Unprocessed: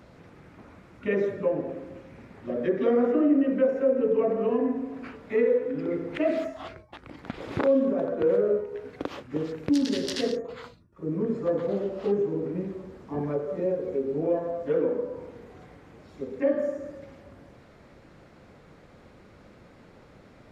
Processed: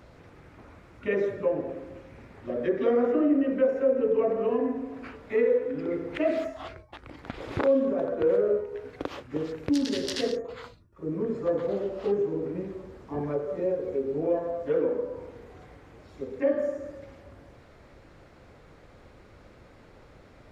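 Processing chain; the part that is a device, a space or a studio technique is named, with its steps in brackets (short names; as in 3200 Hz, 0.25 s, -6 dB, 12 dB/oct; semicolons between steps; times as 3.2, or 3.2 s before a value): low shelf boost with a cut just above (low shelf 75 Hz +7 dB; bell 190 Hz -6 dB 0.93 oct)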